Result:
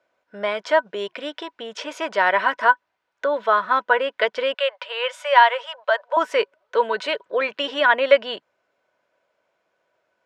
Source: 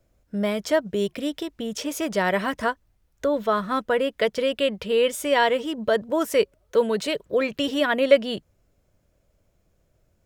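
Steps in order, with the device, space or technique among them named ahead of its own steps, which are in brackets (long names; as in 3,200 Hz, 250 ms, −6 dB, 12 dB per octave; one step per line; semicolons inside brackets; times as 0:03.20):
tin-can telephone (band-pass filter 670–3,100 Hz; hollow resonant body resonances 980/1,500 Hz, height 10 dB, ringing for 60 ms)
0:04.54–0:06.17: elliptic high-pass filter 540 Hz, stop band 40 dB
level +6 dB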